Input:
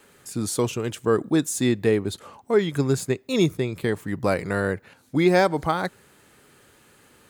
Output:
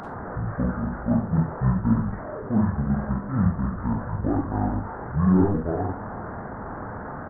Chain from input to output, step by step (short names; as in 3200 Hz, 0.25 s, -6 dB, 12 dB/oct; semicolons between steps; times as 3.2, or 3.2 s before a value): delta modulation 16 kbps, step -26.5 dBFS; Schroeder reverb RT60 0.31 s, combs from 32 ms, DRR 0.5 dB; pitch shift -11.5 st; gain -3 dB